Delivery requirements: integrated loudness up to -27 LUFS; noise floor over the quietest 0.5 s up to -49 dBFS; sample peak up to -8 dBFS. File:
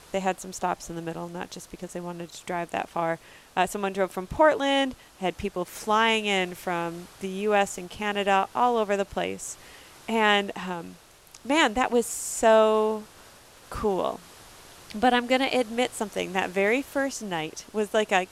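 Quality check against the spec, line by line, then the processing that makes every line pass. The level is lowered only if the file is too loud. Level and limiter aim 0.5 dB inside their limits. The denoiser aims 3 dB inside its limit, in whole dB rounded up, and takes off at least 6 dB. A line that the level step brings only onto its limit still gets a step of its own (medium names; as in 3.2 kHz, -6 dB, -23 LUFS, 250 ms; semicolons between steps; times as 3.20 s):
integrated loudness -26.0 LUFS: fail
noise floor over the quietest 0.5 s -52 dBFS: pass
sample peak -6.0 dBFS: fail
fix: trim -1.5 dB; peak limiter -8.5 dBFS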